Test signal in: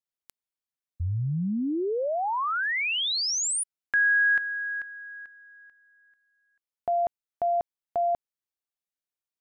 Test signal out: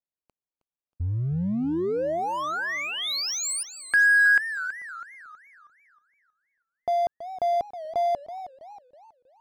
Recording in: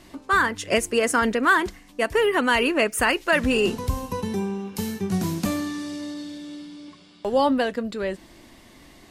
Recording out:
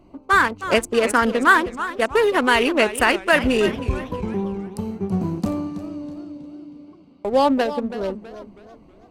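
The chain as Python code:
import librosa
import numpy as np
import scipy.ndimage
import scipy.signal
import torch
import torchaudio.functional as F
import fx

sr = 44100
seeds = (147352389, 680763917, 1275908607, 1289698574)

p1 = fx.wiener(x, sr, points=25)
p2 = fx.low_shelf(p1, sr, hz=450.0, db=-2.5)
p3 = np.sign(p2) * np.maximum(np.abs(p2) - 10.0 ** (-33.5 / 20.0), 0.0)
p4 = p2 + (p3 * 10.0 ** (-5.0 / 20.0))
p5 = fx.echo_warbled(p4, sr, ms=322, feedback_pct=41, rate_hz=2.8, cents=172, wet_db=-13)
y = p5 * 10.0 ** (1.5 / 20.0)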